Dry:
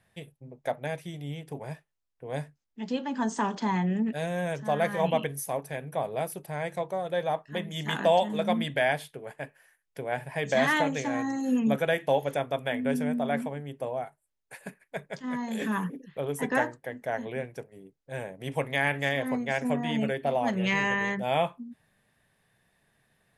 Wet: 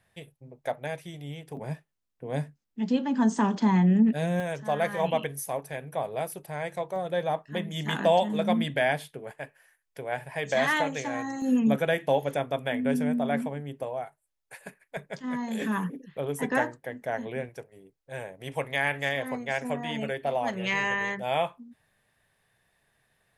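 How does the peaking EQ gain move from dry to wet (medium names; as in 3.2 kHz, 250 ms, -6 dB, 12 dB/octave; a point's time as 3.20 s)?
peaking EQ 210 Hz 1.4 oct
-3.5 dB
from 1.57 s +7.5 dB
from 4.40 s -3 dB
from 6.96 s +3 dB
from 9.31 s -5.5 dB
from 11.42 s +2.5 dB
from 13.83 s -6 dB
from 14.97 s +1 dB
from 17.49 s -6.5 dB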